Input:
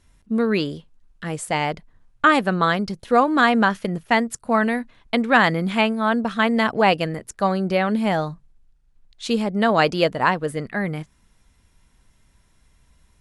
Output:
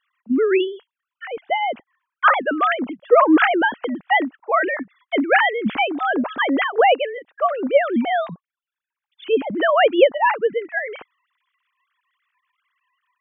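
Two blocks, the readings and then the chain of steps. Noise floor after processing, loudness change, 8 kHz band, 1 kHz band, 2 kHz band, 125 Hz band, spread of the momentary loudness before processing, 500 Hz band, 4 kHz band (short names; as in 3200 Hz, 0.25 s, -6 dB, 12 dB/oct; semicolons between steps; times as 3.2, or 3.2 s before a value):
under -85 dBFS, +1.5 dB, under -40 dB, +1.5 dB, +1.5 dB, -16.5 dB, 11 LU, +4.0 dB, -1.0 dB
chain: sine-wave speech; gain +1.5 dB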